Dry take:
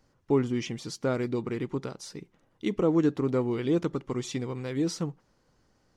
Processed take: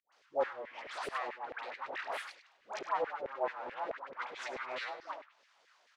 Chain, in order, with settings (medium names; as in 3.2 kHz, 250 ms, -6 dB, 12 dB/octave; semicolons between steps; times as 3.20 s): low-pass that closes with the level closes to 570 Hz, closed at -25.5 dBFS; high-pass 59 Hz 6 dB/octave; amplifier tone stack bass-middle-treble 10-0-10; hum notches 60/120/180 Hz; full-wave rectifier; phase dispersion highs, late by 125 ms, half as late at 760 Hz; on a send: multi-tap echo 71/100 ms -17/-13 dB; on the sum: LFO high-pass saw down 4.6 Hz 450–2100 Hz; distance through air 140 m; trim +15.5 dB